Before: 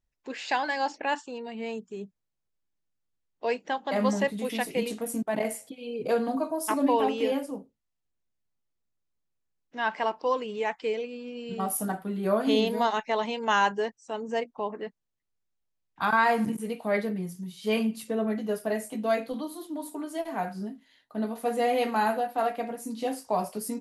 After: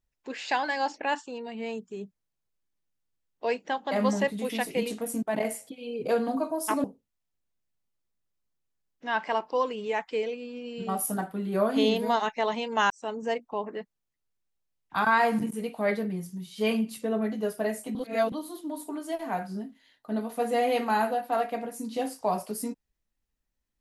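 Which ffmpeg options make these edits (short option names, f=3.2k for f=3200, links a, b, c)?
-filter_complex "[0:a]asplit=5[a][b][c][d][e];[a]atrim=end=6.842[f];[b]atrim=start=7.548:end=13.612[g];[c]atrim=start=13.958:end=19.012[h];[d]atrim=start=19.008:end=19.382,asetpts=PTS-STARTPTS,areverse[i];[e]atrim=start=19.378[j];[f][g]acrossfade=d=0.004:c1=hsin:c2=hsin[k];[k][h]acrossfade=d=0.004:c1=hsin:c2=hsin[l];[l][i]acrossfade=d=0.004:c1=hsin:c2=hsin[m];[m][j]acrossfade=d=0.004:c1=hsin:c2=hsin"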